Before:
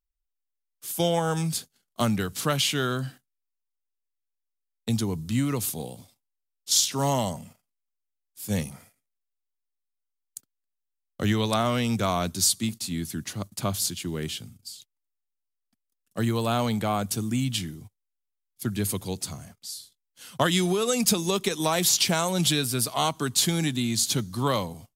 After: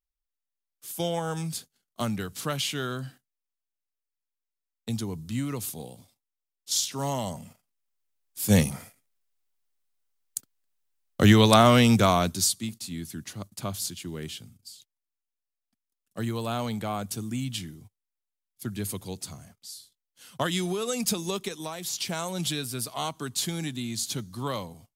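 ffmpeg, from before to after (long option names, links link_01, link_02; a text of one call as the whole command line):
ffmpeg -i in.wav -af "volume=15dB,afade=type=in:start_time=7.21:duration=1.21:silence=0.237137,afade=type=out:start_time=11.81:duration=0.74:silence=0.237137,afade=type=out:start_time=21.31:duration=0.47:silence=0.354813,afade=type=in:start_time=21.78:duration=0.44:silence=0.421697" out.wav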